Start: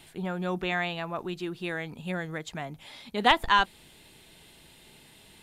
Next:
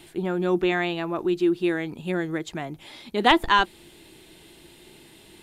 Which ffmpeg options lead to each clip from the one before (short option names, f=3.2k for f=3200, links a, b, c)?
-af "equalizer=f=340:t=o:w=0.4:g=12.5,volume=2.5dB"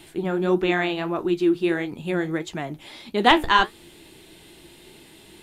-af "flanger=delay=8.9:depth=6.5:regen=-61:speed=1.6:shape=triangular,volume=6dB"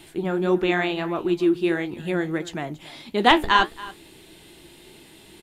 -af "aecho=1:1:279:0.112"